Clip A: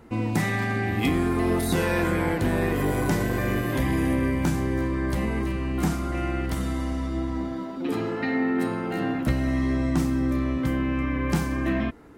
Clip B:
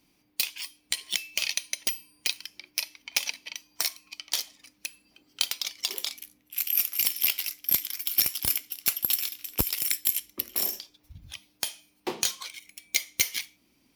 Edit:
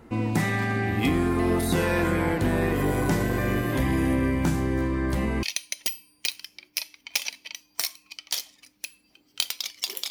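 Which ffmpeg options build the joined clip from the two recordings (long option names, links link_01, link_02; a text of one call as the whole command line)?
ffmpeg -i cue0.wav -i cue1.wav -filter_complex "[0:a]apad=whole_dur=10.1,atrim=end=10.1,atrim=end=5.432[link_01];[1:a]atrim=start=1.438:end=6.11[link_02];[link_01][link_02]acrossfade=duration=0.004:curve1=hsin:curve2=hsin" out.wav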